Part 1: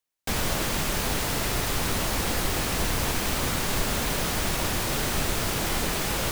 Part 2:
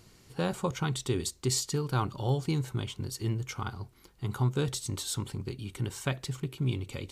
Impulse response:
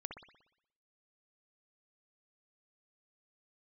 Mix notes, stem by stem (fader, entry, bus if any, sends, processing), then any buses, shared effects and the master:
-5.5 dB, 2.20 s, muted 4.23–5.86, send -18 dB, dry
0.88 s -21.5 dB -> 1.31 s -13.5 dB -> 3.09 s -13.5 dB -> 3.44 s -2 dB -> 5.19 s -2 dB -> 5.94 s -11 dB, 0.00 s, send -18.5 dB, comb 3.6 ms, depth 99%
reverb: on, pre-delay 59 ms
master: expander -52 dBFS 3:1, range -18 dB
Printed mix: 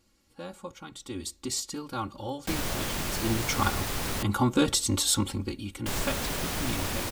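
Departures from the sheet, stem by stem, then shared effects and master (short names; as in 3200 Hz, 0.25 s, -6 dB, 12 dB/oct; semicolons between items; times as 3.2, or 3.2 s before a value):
stem 2 -21.5 dB -> -13.0 dB; master: missing expander -52 dBFS 3:1, range -18 dB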